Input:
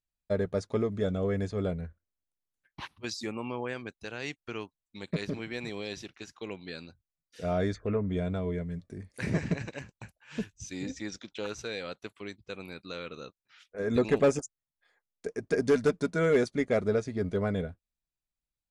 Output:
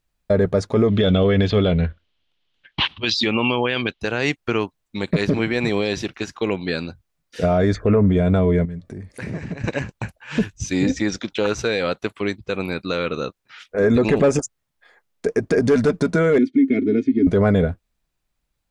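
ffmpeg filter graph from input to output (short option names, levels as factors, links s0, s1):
-filter_complex "[0:a]asettb=1/sr,asplit=3[s0][s1][s2];[s0]atrim=end=0.884[s3];[s1]atrim=start=0.88:end=4.01,asetpts=PTS-STARTPTS,afade=t=in:d=0.004:c=qsin,afade=t=out:st=3.126:d=0.004:c=qsin,lowpass=f=4100:t=q:w=1.5,equalizer=f=3100:t=o:w=0.72:g=13.5[s4];[s2]atrim=start=4.006[s5];[s3][s4]acrossfade=d=0.004:c1=hsin:c2=qsin[s6];[s6][s5]acrossfade=d=0.004:c1=qsin:c2=hsin,asettb=1/sr,asplit=3[s7][s8][s9];[s7]atrim=end=8.654[s10];[s8]atrim=start=8.65:end=9.64,asetpts=PTS-STARTPTS,afade=t=in:d=0.004:c=qsin,afade=t=out:st=0.986:d=0.004:c=qsin,acompressor=threshold=0.00251:ratio=2.5:attack=3.2:release=140:knee=1:detection=peak,asoftclip=type=hard:threshold=0.0119[s11];[s9]atrim=start=9.636[s12];[s10][s11]acrossfade=d=0.004:c1=hsin:c2=qsin[s13];[s13][s12]acrossfade=d=0.004:c1=qsin:c2=hsin,asettb=1/sr,asplit=3[s14][s15][s16];[s14]atrim=end=16.384[s17];[s15]atrim=start=16.38:end=17.27,asetpts=PTS-STARTPTS,afade=t=in:d=0.004:c=qsin,afade=t=out:st=0.886:d=0.004:c=qsin,asplit=3[s18][s19][s20];[s18]bandpass=f=270:t=q:w=8,volume=1[s21];[s19]bandpass=f=2290:t=q:w=8,volume=0.501[s22];[s20]bandpass=f=3010:t=q:w=8,volume=0.355[s23];[s21][s22][s23]amix=inputs=3:normalize=0,equalizer=f=210:w=0.8:g=9.5,aecho=1:1:2.8:0.93,atrim=end_sample=39249[s24];[s16]atrim=start=17.266[s25];[s17][s24]acrossfade=d=0.004:c1=hsin:c2=qsin[s26];[s26][s25]acrossfade=d=0.004:c1=qsin:c2=hsin,highshelf=f=3600:g=-8,alimiter=level_in=20:limit=0.891:release=50:level=0:latency=1,volume=0.398"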